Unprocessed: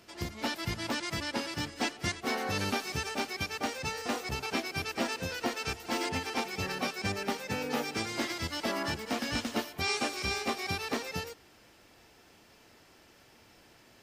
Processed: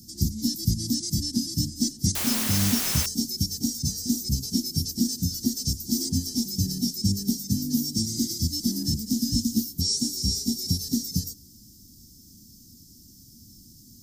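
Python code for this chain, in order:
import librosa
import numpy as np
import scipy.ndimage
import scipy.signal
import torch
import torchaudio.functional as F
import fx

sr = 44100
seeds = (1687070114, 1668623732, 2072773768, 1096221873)

p1 = scipy.signal.sosfilt(scipy.signal.ellip(3, 1.0, 40, [240.0, 5500.0], 'bandstop', fs=sr, output='sos'), x)
p2 = fx.peak_eq(p1, sr, hz=14000.0, db=8.0, octaves=0.2)
p3 = fx.rider(p2, sr, range_db=10, speed_s=0.5)
p4 = p2 + F.gain(torch.from_numpy(p3), -1.0).numpy()
p5 = fx.quant_dither(p4, sr, seeds[0], bits=6, dither='triangular', at=(2.15, 3.06))
y = F.gain(torch.from_numpy(p5), 8.0).numpy()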